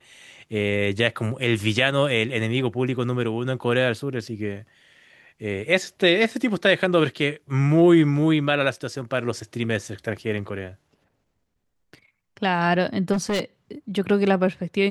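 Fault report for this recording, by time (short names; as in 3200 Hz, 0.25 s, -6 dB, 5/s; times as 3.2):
13.12–13.41 clipped -20 dBFS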